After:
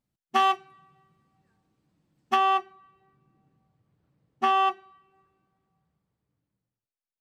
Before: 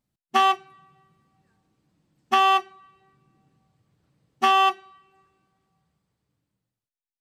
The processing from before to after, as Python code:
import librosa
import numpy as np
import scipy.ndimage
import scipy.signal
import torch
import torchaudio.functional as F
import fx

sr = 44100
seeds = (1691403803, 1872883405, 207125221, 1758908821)

y = fx.high_shelf(x, sr, hz=3100.0, db=fx.steps((0.0, -3.0), (2.35, -12.0)))
y = y * librosa.db_to_amplitude(-2.5)